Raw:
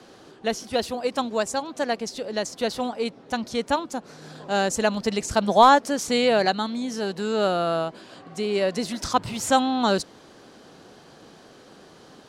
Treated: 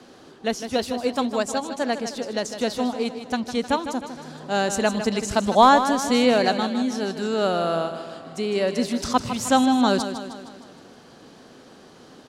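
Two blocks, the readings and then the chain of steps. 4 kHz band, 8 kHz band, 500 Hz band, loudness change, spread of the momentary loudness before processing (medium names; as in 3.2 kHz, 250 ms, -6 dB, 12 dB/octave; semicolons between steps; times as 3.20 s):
+0.5 dB, +0.5 dB, +0.5 dB, +1.5 dB, 10 LU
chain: peaking EQ 250 Hz +6 dB 0.25 oct; on a send: feedback delay 155 ms, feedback 55%, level -10 dB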